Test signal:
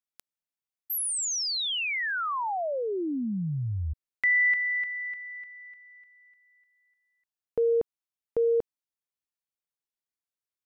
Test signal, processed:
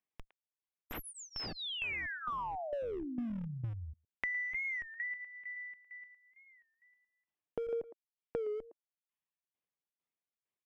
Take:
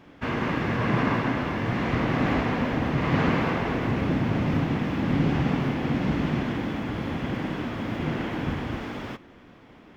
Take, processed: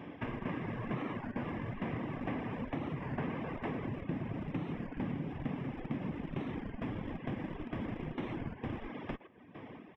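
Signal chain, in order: tremolo saw down 2.2 Hz, depth 75%; high-pass 100 Hz 12 dB/octave; bass shelf 400 Hz +3 dB; band-stop 1.4 kHz, Q 5.2; speakerphone echo 110 ms, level -8 dB; in parallel at -9 dB: Schmitt trigger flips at -28 dBFS; on the sum: reverb removal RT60 0.59 s; Savitzky-Golay filter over 25 samples; compression 4:1, threshold -43 dBFS; warped record 33 1/3 rpm, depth 160 cents; trim +4.5 dB

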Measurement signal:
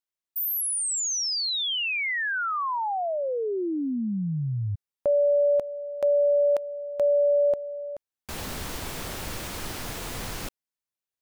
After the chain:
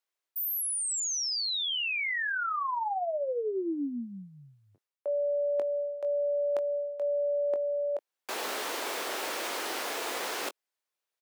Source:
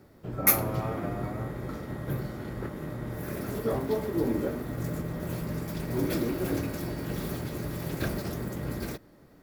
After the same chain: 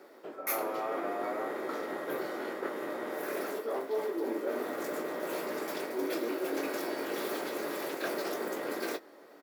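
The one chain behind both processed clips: high-pass 360 Hz 24 dB/octave; treble shelf 4.8 kHz -6.5 dB; reverse; compression 8:1, threshold -37 dBFS; reverse; doubling 21 ms -10 dB; trim +6.5 dB

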